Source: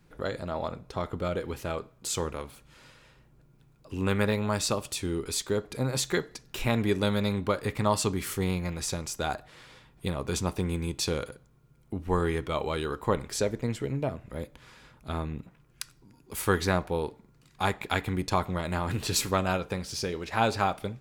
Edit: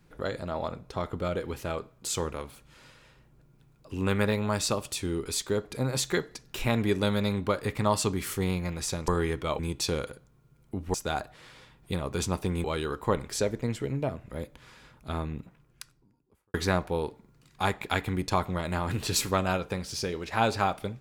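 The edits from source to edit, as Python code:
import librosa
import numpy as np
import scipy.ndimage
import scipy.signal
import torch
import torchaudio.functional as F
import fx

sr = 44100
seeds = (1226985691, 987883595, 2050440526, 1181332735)

y = fx.studio_fade_out(x, sr, start_s=15.39, length_s=1.15)
y = fx.edit(y, sr, fx.swap(start_s=9.08, length_s=1.7, other_s=12.13, other_length_s=0.51), tone=tone)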